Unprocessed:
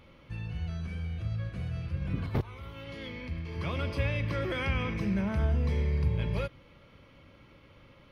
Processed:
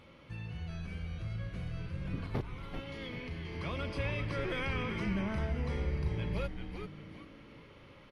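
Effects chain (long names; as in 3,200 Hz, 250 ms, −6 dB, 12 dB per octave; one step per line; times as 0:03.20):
low-shelf EQ 60 Hz −10.5 dB
in parallel at −1.5 dB: downward compressor, threshold −44 dBFS, peak gain reduction 17 dB
on the sum: echo with shifted repeats 389 ms, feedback 39%, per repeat −130 Hz, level −6 dB
level −5 dB
AC-3 64 kbit/s 32,000 Hz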